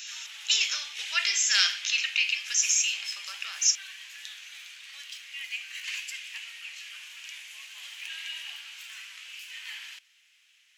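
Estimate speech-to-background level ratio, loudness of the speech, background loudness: 14.0 dB, −24.5 LKFS, −38.5 LKFS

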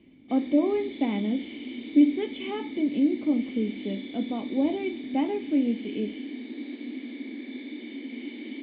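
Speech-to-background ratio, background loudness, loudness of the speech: 10.5 dB, −38.0 LKFS, −27.5 LKFS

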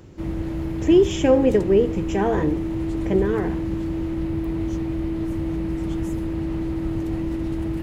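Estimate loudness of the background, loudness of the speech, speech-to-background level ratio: −27.0 LKFS, −20.5 LKFS, 6.5 dB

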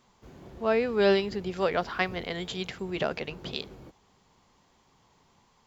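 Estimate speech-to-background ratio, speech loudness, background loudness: 20.0 dB, −29.0 LKFS, −49.0 LKFS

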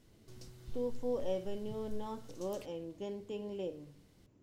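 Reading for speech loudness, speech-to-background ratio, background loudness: −40.5 LKFS, 15.5 dB, −56.0 LKFS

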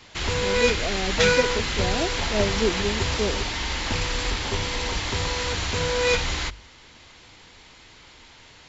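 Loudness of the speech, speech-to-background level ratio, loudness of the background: −29.0 LKFS, −4.5 dB, −24.5 LKFS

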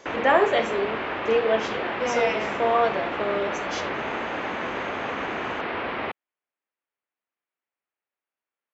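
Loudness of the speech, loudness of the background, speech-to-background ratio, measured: −25.0 LKFS, −29.5 LKFS, 4.5 dB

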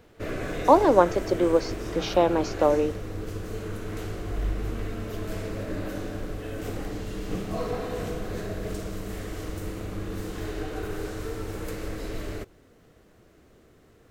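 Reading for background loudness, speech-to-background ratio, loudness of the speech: −34.0 LKFS, 11.0 dB, −23.0 LKFS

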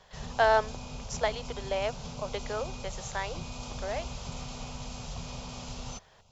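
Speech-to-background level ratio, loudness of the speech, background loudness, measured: 9.0 dB, −32.0 LKFS, −41.0 LKFS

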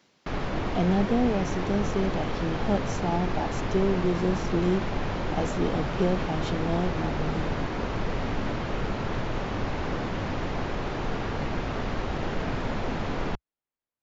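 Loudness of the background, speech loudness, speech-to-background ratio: −31.0 LKFS, −29.0 LKFS, 2.0 dB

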